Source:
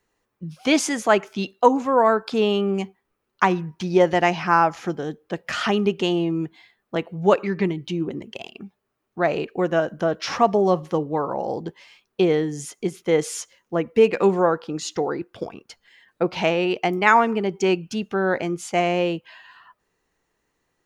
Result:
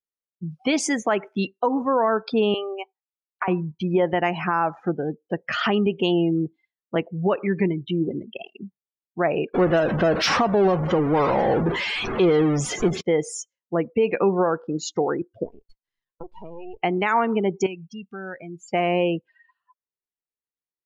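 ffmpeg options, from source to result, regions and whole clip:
ffmpeg -i in.wav -filter_complex "[0:a]asettb=1/sr,asplit=3[link_01][link_02][link_03];[link_01]atrim=end=2.544[link_04];[link_02]atrim=start=2.54:end=3.48,asetpts=PTS-STARTPTS,afade=type=in:duration=0.004:curve=qsin,afade=type=out:start_time=0.936:duration=0.004:curve=qsin,highpass=frequency=480:width=0.5412,highpass=frequency=480:width=1.3066,acompressor=threshold=-20dB:ratio=5:attack=3.2:release=140:knee=1:detection=peak[link_05];[link_03]atrim=start=3.476[link_06];[link_04][link_05]acrossfade=duration=0.004:curve1=hsin:curve2=qsin[link_07];[link_07][link_06]acrossfade=duration=0.004:curve1=qsin:curve2=hsin,asettb=1/sr,asplit=3[link_08][link_09][link_10];[link_08]atrim=end=9.544[link_11];[link_09]atrim=start=9.54:end=13.01,asetpts=PTS-STARTPTS,afade=type=in:duration=0.004:curve=qsin,afade=type=out:start_time=3.466:duration=0.004:curve=qsin,aeval=exprs='val(0)+0.5*0.0944*sgn(val(0))':channel_layout=same,adynamicsmooth=sensitivity=6:basefreq=1600[link_12];[link_10]atrim=start=13.006[link_13];[link_11][link_12]acrossfade=duration=0.004:curve1=hsin:curve2=qsin[link_14];[link_14][link_13]acrossfade=duration=0.004:curve1=qsin:curve2=hsin,asettb=1/sr,asplit=3[link_15][link_16][link_17];[link_15]atrim=end=15.454[link_18];[link_16]atrim=start=15.45:end=16.82,asetpts=PTS-STARTPTS,afade=type=in:duration=0.004:curve=qsin,afade=type=out:start_time=1.366:duration=0.004:curve=qsin,highpass=150,equalizer=frequency=430:width_type=q:width=4:gain=8,equalizer=frequency=1000:width_type=q:width=4:gain=9,equalizer=frequency=4100:width_type=q:width=4:gain=5,lowpass=frequency=7600:width=0.5412,lowpass=frequency=7600:width=1.3066,aeval=exprs='max(val(0),0)':channel_layout=same,acompressor=threshold=-35dB:ratio=4:attack=3.2:release=140:knee=1:detection=peak[link_19];[link_17]atrim=start=16.816[link_20];[link_18][link_19]acrossfade=duration=0.004:curve1=hsin:curve2=qsin[link_21];[link_21][link_20]acrossfade=duration=0.004:curve1=qsin:curve2=hsin,asettb=1/sr,asplit=3[link_22][link_23][link_24];[link_22]atrim=end=17.664[link_25];[link_23]atrim=start=17.66:end=18.68,asetpts=PTS-STARTPTS,afade=type=in:duration=0.004:curve=qsin,afade=type=out:start_time=1.016:duration=0.004:curve=qsin,equalizer=frequency=410:width_type=o:width=2.6:gain=-8.5,acompressor=threshold=-37dB:ratio=2:attack=3.2:release=140:knee=1:detection=peak[link_26];[link_24]atrim=start=18.676[link_27];[link_25][link_26]acrossfade=duration=0.004:curve1=hsin:curve2=qsin[link_28];[link_28][link_27]acrossfade=duration=0.004:curve1=qsin:curve2=hsin,afftdn=noise_reduction=35:noise_floor=-32,alimiter=limit=-13.5dB:level=0:latency=1:release=133,volume=2dB" out.wav

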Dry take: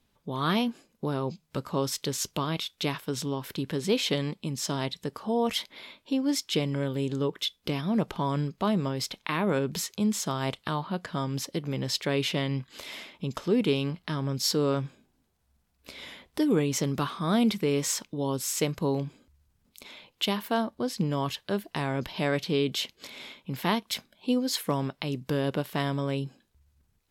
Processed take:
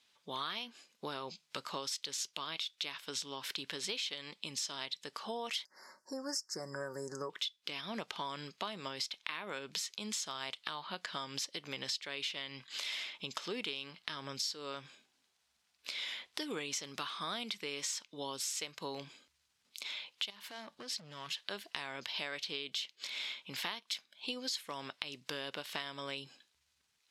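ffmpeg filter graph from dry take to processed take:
ffmpeg -i in.wav -filter_complex "[0:a]asettb=1/sr,asplit=3[link_01][link_02][link_03];[link_01]atrim=end=5.654[link_04];[link_02]atrim=start=5.65:end=7.3,asetpts=PTS-STARTPTS,afade=type=in:duration=0.004:curve=qsin,afade=type=out:start_time=1.646:duration=0.004:curve=qsin,asuperstop=centerf=3000:order=12:qfactor=0.94,aecho=1:1:5.4:0.41,atrim=end_sample=72765[link_05];[link_03]atrim=start=7.296[link_06];[link_04][link_05]acrossfade=duration=0.004:curve1=hsin:curve2=qsin[link_07];[link_07][link_06]acrossfade=duration=0.004:curve1=qsin:curve2=hsin,asettb=1/sr,asplit=3[link_08][link_09][link_10];[link_08]atrim=end=20.304[link_11];[link_09]atrim=start=20.3:end=21.38,asetpts=PTS-STARTPTS,afade=type=in:duration=0.004:curve=qsin,afade=type=out:start_time=1.076:duration=0.004:curve=qsin,equalizer=frequency=160:width=3:gain=11.5,acompressor=threshold=-33dB:ratio=10:attack=3.2:release=140:knee=1:detection=peak,asoftclip=type=hard:threshold=-34dB[link_12];[link_10]atrim=start=21.376[link_13];[link_11][link_12]acrossfade=duration=0.004:curve1=hsin:curve2=qsin[link_14];[link_14][link_13]acrossfade=duration=0.004:curve1=qsin:curve2=hsin,lowpass=4200,aderivative,acompressor=threshold=-51dB:ratio=8,volume=15dB" out.wav

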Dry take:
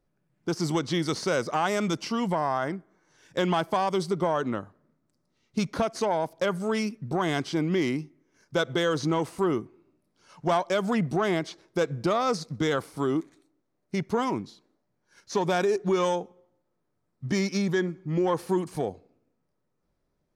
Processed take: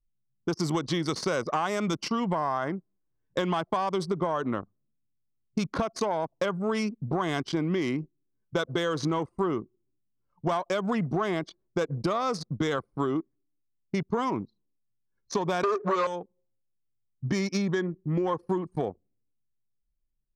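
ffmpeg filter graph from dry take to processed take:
ffmpeg -i in.wav -filter_complex "[0:a]asettb=1/sr,asplit=3[link_01][link_02][link_03];[link_01]atrim=end=15.634[link_04];[link_02]atrim=start=15.63:end=16.07,asetpts=PTS-STARTPTS,afade=type=in:duration=0.004:curve=qsin,afade=type=out:start_time=0.436:duration=0.004:curve=qsin,aeval=exprs='0.188*sin(PI/2*2.24*val(0)/0.188)':channel_layout=same,highpass=280,equalizer=frequency=320:width_type=q:width=4:gain=-7,equalizer=frequency=550:width_type=q:width=4:gain=4,equalizer=frequency=1200:width_type=q:width=4:gain=6,equalizer=frequency=3100:width_type=q:width=4:gain=-6,equalizer=frequency=5000:width_type=q:width=4:gain=-5,lowpass=frequency=5900:width=0.5412,lowpass=frequency=5900:width=1.3066[link_05];[link_03]atrim=start=16.066[link_06];[link_04][link_05]acrossfade=duration=0.004:curve1=hsin:curve2=qsin[link_07];[link_07][link_06]acrossfade=duration=0.004:curve1=qsin:curve2=hsin,anlmdn=2.51,equalizer=frequency=1100:width_type=o:width=0.2:gain=6,acompressor=threshold=-27dB:ratio=6,volume=3dB" out.wav

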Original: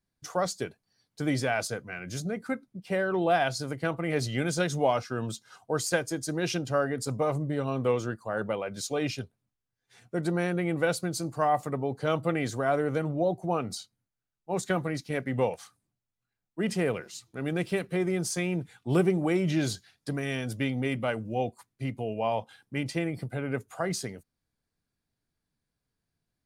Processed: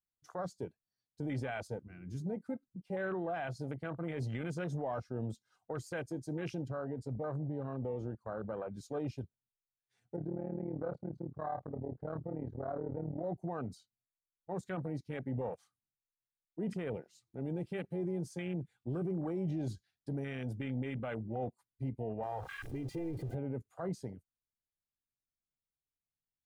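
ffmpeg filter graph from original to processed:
ffmpeg -i in.wav -filter_complex "[0:a]asettb=1/sr,asplit=3[link_01][link_02][link_03];[link_01]atrim=end=6.684[link_04];[link_02]atrim=start=6.68:end=8.69,asetpts=PTS-STARTPTS,afade=type=in:duration=0.004:curve=qsin,afade=type=out:start_time=2.006:duration=0.004:curve=qsin,acompressor=threshold=-29dB:ratio=3:attack=3.2:release=140:knee=1:detection=peak,highshelf=frequency=6400:gain=-11[link_05];[link_03]atrim=start=8.686[link_06];[link_04][link_05]acrossfade=duration=0.004:curve1=hsin:curve2=qsin[link_07];[link_07][link_06]acrossfade=duration=0.004:curve1=qsin:curve2=hsin,asettb=1/sr,asplit=3[link_08][link_09][link_10];[link_08]atrim=end=10.164[link_11];[link_09]atrim=start=10.16:end=13.24,asetpts=PTS-STARTPTS,afade=type=in:duration=0.004:curve=qsin,afade=type=out:start_time=3.076:duration=0.004:curve=qsin,lowpass=1200,tremolo=f=38:d=0.857,asplit=2[link_12][link_13];[link_13]adelay=32,volume=-11.5dB[link_14];[link_12][link_14]amix=inputs=2:normalize=0,atrim=end_sample=135828[link_15];[link_10]atrim=start=13.236[link_16];[link_11][link_15]acrossfade=duration=0.004:curve1=hsin:curve2=qsin[link_17];[link_17][link_16]acrossfade=duration=0.004:curve1=qsin:curve2=hsin,asettb=1/sr,asplit=3[link_18][link_19][link_20];[link_18]atrim=end=22.234[link_21];[link_19]atrim=start=22.23:end=23.35,asetpts=PTS-STARTPTS,afade=type=in:duration=0.004:curve=qsin,afade=type=out:start_time=1.116:duration=0.004:curve=qsin,aeval=exprs='val(0)+0.5*0.02*sgn(val(0))':channel_layout=same,acompressor=threshold=-30dB:ratio=4:attack=3.2:release=140:knee=1:detection=peak,aecho=1:1:2.5:0.68,atrim=end_sample=49392[link_22];[link_20]atrim=start=23.346[link_23];[link_21][link_22]acrossfade=duration=0.004:curve1=hsin:curve2=qsin[link_24];[link_24][link_23]acrossfade=duration=0.004:curve1=qsin:curve2=hsin,afwtdn=0.02,lowshelf=frequency=69:gain=7.5,alimiter=limit=-24dB:level=0:latency=1:release=13,volume=-5.5dB" out.wav

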